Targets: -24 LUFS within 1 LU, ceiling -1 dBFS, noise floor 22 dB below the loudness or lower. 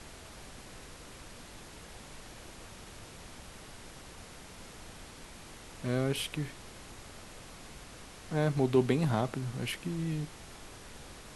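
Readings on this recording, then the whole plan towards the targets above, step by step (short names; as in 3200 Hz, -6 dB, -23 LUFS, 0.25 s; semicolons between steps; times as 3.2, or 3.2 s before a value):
noise floor -50 dBFS; noise floor target -55 dBFS; loudness -32.5 LUFS; peak -13.0 dBFS; loudness target -24.0 LUFS
-> noise print and reduce 6 dB; gain +8.5 dB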